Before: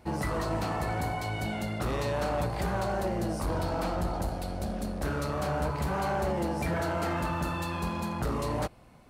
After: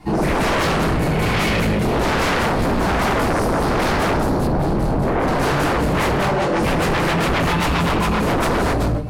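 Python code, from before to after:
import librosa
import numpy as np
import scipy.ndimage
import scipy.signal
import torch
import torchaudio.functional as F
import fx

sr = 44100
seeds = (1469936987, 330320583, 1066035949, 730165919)

y = fx.bandpass_edges(x, sr, low_hz=460.0, high_hz=6700.0, at=(6.17, 6.59))
y = y + 10.0 ** (-3.5 / 20.0) * np.pad(y, (int(175 * sr / 1000.0), 0))[:len(y)]
y = fx.room_shoebox(y, sr, seeds[0], volume_m3=800.0, walls='furnished', distance_m=9.7)
y = fx.rotary_switch(y, sr, hz=1.2, then_hz=7.5, switch_at_s=5.62)
y = fx.high_shelf(y, sr, hz=2600.0, db=-11.0, at=(4.47, 5.28))
y = fx.fold_sine(y, sr, drive_db=4, ceiling_db=-15.0)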